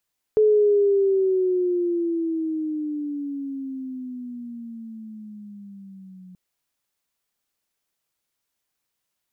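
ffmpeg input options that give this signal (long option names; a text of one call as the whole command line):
ffmpeg -f lavfi -i "aevalsrc='pow(10,(-13-28*t/5.98)/20)*sin(2*PI*432*5.98/(-15*log(2)/12)*(exp(-15*log(2)/12*t/5.98)-1))':duration=5.98:sample_rate=44100" out.wav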